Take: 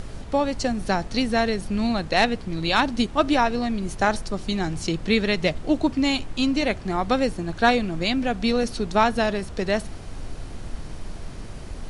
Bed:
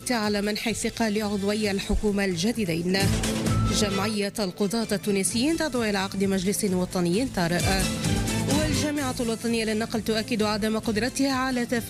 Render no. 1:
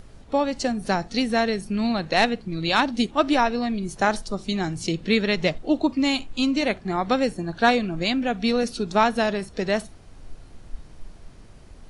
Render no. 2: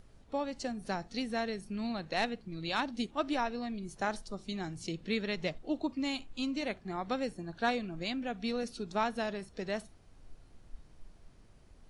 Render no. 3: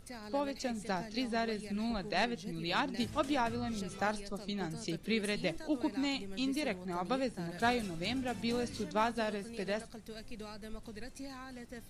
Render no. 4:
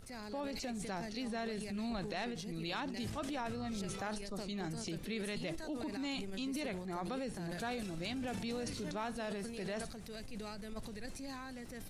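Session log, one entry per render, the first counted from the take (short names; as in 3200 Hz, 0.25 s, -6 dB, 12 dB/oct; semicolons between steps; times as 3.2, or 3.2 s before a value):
noise print and reduce 11 dB
gain -12.5 dB
add bed -22 dB
compressor, threshold -36 dBFS, peak gain reduction 10.5 dB; transient shaper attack -4 dB, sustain +8 dB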